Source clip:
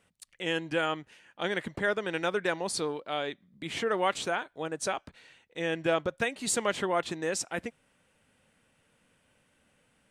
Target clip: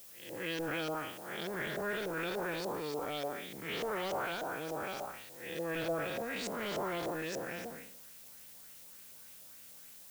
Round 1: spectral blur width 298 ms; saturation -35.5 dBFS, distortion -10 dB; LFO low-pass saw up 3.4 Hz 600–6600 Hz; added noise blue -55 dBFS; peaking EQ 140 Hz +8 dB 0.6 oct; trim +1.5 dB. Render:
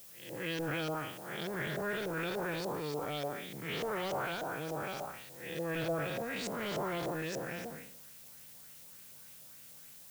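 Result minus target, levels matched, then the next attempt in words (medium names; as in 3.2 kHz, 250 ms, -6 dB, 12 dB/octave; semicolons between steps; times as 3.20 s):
125 Hz band +5.0 dB
spectral blur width 298 ms; saturation -35.5 dBFS, distortion -10 dB; LFO low-pass saw up 3.4 Hz 600–6600 Hz; added noise blue -55 dBFS; trim +1.5 dB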